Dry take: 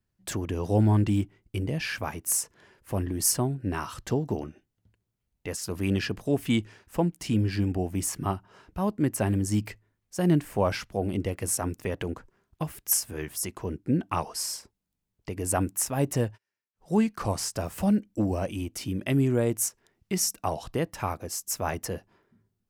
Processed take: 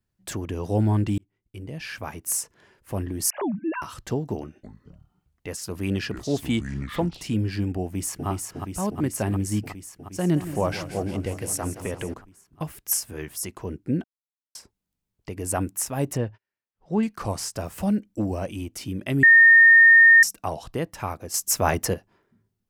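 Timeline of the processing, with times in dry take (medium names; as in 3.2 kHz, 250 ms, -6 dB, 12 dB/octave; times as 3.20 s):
1.18–2.26 s: fade in
3.30–3.82 s: formants replaced by sine waves
4.41–7.22 s: ever faster or slower copies 223 ms, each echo -6 st, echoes 2, each echo -6 dB
7.83–8.28 s: echo throw 360 ms, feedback 80%, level -4 dB
10.17–12.14 s: modulated delay 171 ms, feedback 72%, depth 53 cents, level -13 dB
14.04–14.55 s: mute
16.17–17.03 s: distance through air 170 m
19.23–20.23 s: bleep 1.83 kHz -9 dBFS
21.34–21.94 s: gain +8 dB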